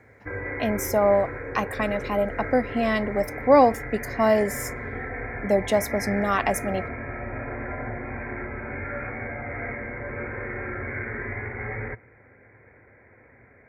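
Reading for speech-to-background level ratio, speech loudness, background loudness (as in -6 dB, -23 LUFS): 9.0 dB, -24.0 LUFS, -33.0 LUFS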